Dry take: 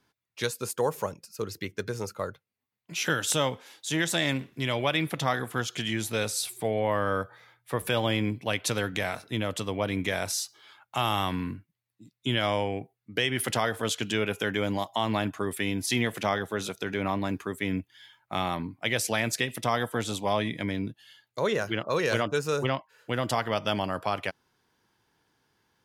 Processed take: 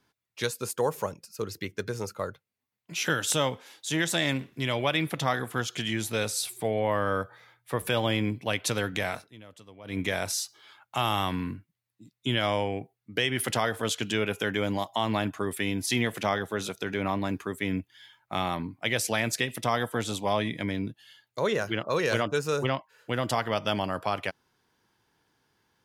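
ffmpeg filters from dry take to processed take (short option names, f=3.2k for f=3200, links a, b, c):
-filter_complex "[0:a]asplit=3[a][b][c];[a]atrim=end=9.31,asetpts=PTS-STARTPTS,afade=t=out:st=9.16:d=0.15:silence=0.112202[d];[b]atrim=start=9.31:end=9.84,asetpts=PTS-STARTPTS,volume=-19dB[e];[c]atrim=start=9.84,asetpts=PTS-STARTPTS,afade=t=in:d=0.15:silence=0.112202[f];[d][e][f]concat=n=3:v=0:a=1"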